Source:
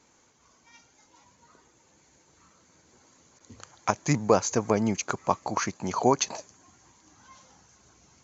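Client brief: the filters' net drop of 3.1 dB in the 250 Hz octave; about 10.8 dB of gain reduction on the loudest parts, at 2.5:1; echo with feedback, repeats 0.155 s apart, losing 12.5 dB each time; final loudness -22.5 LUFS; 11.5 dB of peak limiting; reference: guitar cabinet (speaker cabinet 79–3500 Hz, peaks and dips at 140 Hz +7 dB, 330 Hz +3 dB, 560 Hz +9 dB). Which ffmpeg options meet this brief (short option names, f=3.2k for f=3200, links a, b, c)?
-af "equalizer=f=250:t=o:g=-7,acompressor=threshold=-34dB:ratio=2.5,alimiter=level_in=3dB:limit=-24dB:level=0:latency=1,volume=-3dB,highpass=79,equalizer=f=140:t=q:w=4:g=7,equalizer=f=330:t=q:w=4:g=3,equalizer=f=560:t=q:w=4:g=9,lowpass=f=3.5k:w=0.5412,lowpass=f=3.5k:w=1.3066,aecho=1:1:155|310|465:0.237|0.0569|0.0137,volume=17dB"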